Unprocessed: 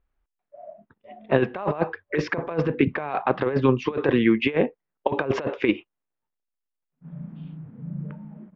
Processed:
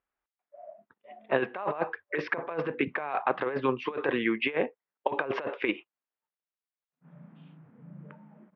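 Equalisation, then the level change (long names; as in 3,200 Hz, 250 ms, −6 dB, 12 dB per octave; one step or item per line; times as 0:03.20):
high-pass filter 970 Hz 6 dB per octave
high-frequency loss of the air 280 metres
+1.5 dB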